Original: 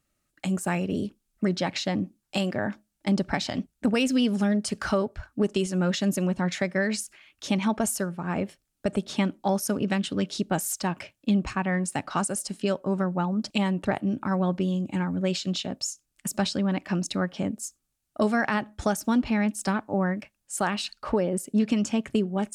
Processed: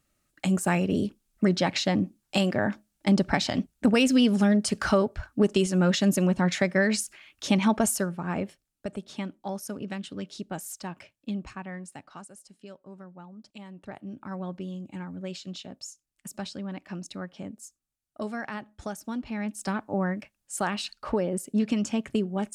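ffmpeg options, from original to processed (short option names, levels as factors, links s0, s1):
-af "volume=10,afade=t=out:st=7.74:d=1.21:silence=0.266073,afade=t=out:st=11.29:d=1:silence=0.298538,afade=t=in:st=13.67:d=0.68:silence=0.334965,afade=t=in:st=19.26:d=0.62:silence=0.398107"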